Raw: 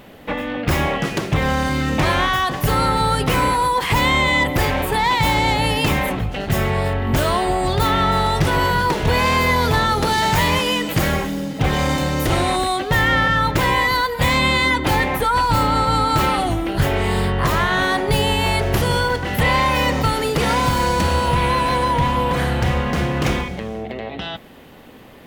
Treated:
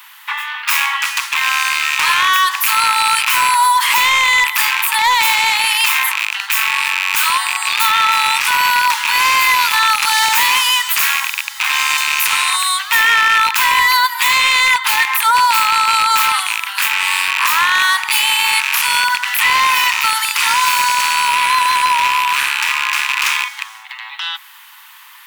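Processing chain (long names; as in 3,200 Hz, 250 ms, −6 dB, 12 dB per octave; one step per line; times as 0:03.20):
loose part that buzzes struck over −23 dBFS, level −10 dBFS
Butterworth high-pass 890 Hz 96 dB per octave
high-shelf EQ 6,100 Hz +9.5 dB
in parallel at +2 dB: brickwall limiter −11 dBFS, peak gain reduction 8 dB
on the sum: hard clipping −7 dBFS, distortion −19 dB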